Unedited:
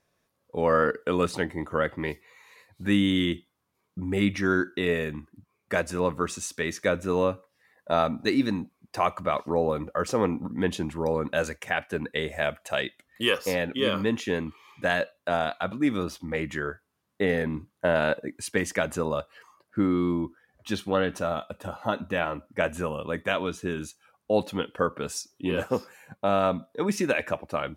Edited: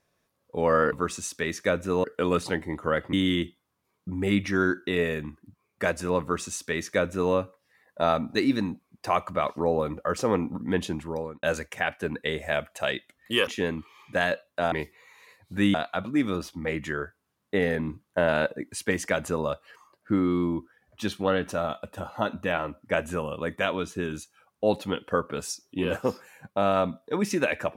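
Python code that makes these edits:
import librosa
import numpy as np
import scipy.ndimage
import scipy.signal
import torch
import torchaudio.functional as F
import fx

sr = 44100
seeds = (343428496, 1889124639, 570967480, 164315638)

y = fx.edit(x, sr, fx.move(start_s=2.01, length_s=1.02, to_s=15.41),
    fx.duplicate(start_s=6.11, length_s=1.12, to_s=0.92),
    fx.fade_out_span(start_s=10.64, length_s=0.69, curve='qsin'),
    fx.cut(start_s=13.37, length_s=0.79), tone=tone)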